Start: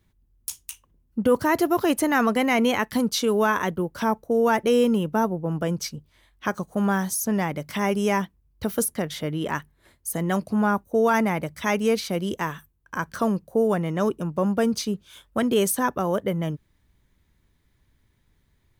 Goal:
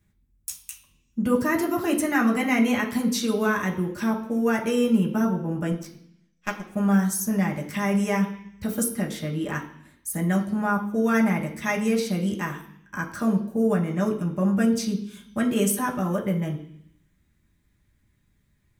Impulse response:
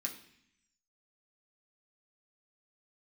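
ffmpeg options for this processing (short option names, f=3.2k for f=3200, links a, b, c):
-filter_complex "[0:a]asettb=1/sr,asplit=3[a][b][c];[a]atrim=end=5.724[d];[b]atrim=start=5.72:end=6.67,asetpts=PTS-STARTPTS,afade=t=in:d=0.004:c=qsin,afade=t=out:st=0.946:d=0.004:c=qsin,aeval=exprs='0.299*(cos(1*acos(clip(val(0)/0.299,-1,1)))-cos(1*PI/2))+0.075*(cos(2*acos(clip(val(0)/0.299,-1,1)))-cos(2*PI/2))+0.0596*(cos(3*acos(clip(val(0)/0.299,-1,1)))-cos(3*PI/2))+0.0133*(cos(7*acos(clip(val(0)/0.299,-1,1)))-cos(7*PI/2))':c=same[e];[c]atrim=start=6.666[f];[d][e]acrossfade=d=0.004:c1=hsin:c2=qsin[g];[g][f]acrossfade=d=0.004:c1=qsin:c2=hsin[h];[1:a]atrim=start_sample=2205[i];[h][i]afir=irnorm=-1:irlink=0,volume=-1.5dB"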